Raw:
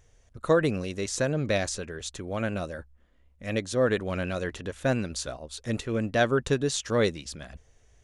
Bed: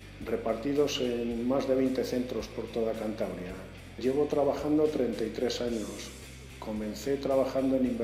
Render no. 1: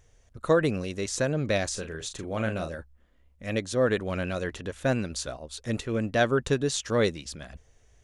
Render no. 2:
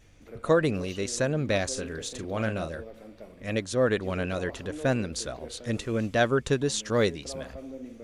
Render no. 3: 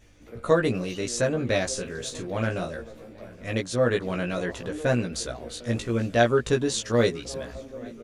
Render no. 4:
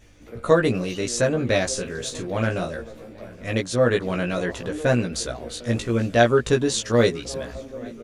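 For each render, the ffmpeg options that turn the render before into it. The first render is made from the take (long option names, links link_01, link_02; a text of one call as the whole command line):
ffmpeg -i in.wav -filter_complex "[0:a]asettb=1/sr,asplit=3[link_01][link_02][link_03];[link_01]atrim=end=1.704[link_04];[link_02]atrim=start=1.7:end=2.75,asetpts=PTS-STARTPTS,afade=type=in:duration=0.004:curve=qsin,afade=type=out:start_time=1.046:duration=0.004:curve=qsin,asplit=2[link_05][link_06];[link_06]adelay=37,volume=-8dB[link_07];[link_05][link_07]amix=inputs=2:normalize=0,atrim=end_sample=46305[link_08];[link_03]atrim=start=2.746[link_09];[link_04][link_08]acrossfade=duration=0.004:curve1=hsin:curve2=qsin[link_10];[link_10][link_09]acrossfade=duration=0.004:curve1=qsin:curve2=hsin" out.wav
ffmpeg -i in.wav -i bed.wav -filter_complex "[1:a]volume=-13.5dB[link_01];[0:a][link_01]amix=inputs=2:normalize=0" out.wav
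ffmpeg -i in.wav -filter_complex "[0:a]asplit=2[link_01][link_02];[link_02]adelay=17,volume=-3dB[link_03];[link_01][link_03]amix=inputs=2:normalize=0,asplit=2[link_04][link_05];[link_05]adelay=825,lowpass=frequency=3300:poles=1,volume=-22dB,asplit=2[link_06][link_07];[link_07]adelay=825,lowpass=frequency=3300:poles=1,volume=0.49,asplit=2[link_08][link_09];[link_09]adelay=825,lowpass=frequency=3300:poles=1,volume=0.49[link_10];[link_04][link_06][link_08][link_10]amix=inputs=4:normalize=0" out.wav
ffmpeg -i in.wav -af "volume=3.5dB" out.wav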